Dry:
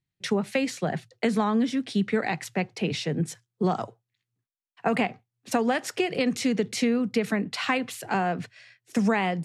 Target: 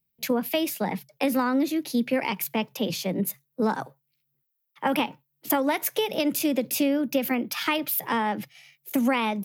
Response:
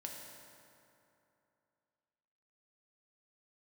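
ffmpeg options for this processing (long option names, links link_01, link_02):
-af "aexciter=amount=5.9:drive=9.5:freq=9900,asetrate=52444,aresample=44100,atempo=0.840896"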